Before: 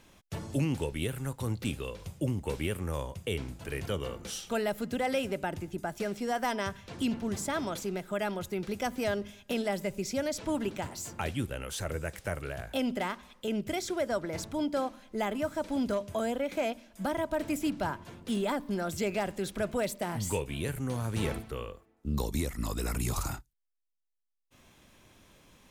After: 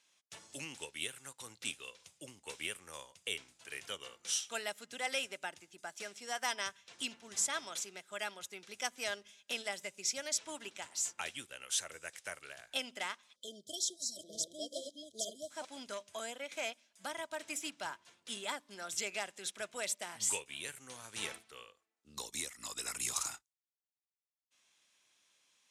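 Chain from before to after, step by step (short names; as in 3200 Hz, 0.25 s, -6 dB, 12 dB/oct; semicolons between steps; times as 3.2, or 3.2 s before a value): 13.52–15.65 reverse delay 0.432 s, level -2.5 dB; 13.96–14.17 spectral gain 300–3800 Hz -23 dB; weighting filter ITU-R 468; 13.36–15.51 spectral delete 700–3100 Hz; dynamic EQ 4500 Hz, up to -6 dB, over -53 dBFS, Q 6; upward expander 1.5:1, over -52 dBFS; gain -4.5 dB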